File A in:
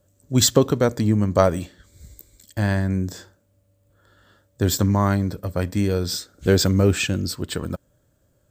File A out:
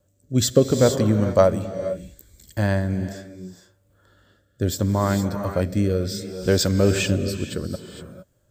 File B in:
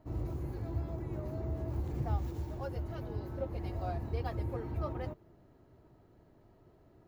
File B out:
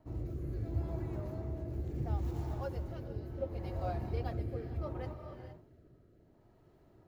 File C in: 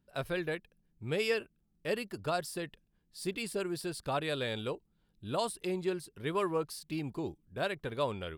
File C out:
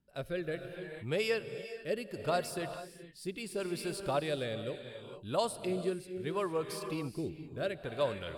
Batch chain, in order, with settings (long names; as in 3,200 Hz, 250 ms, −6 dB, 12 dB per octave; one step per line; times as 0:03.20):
dynamic equaliser 570 Hz, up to +6 dB, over −40 dBFS, Q 3.8
reverb whose tail is shaped and stops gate 490 ms rising, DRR 8 dB
rotating-speaker cabinet horn 0.7 Hz